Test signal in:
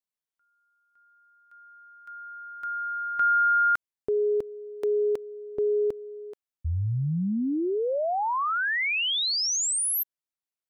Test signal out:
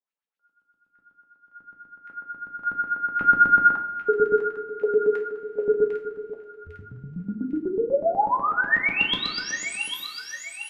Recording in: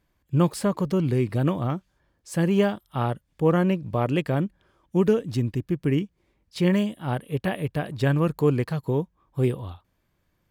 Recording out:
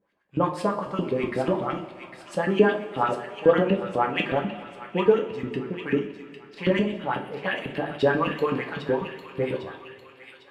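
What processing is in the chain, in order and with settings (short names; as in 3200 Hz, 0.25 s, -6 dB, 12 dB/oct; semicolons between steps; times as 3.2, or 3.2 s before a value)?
low shelf 160 Hz -3 dB; LFO band-pass saw up 8.1 Hz 280–3300 Hz; de-hum 52.92 Hz, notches 14; on a send: thin delay 0.802 s, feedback 48%, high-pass 2000 Hz, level -6 dB; on the sum: two-slope reverb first 0.3 s, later 2.8 s, from -18 dB, DRR 0.5 dB; gain +7.5 dB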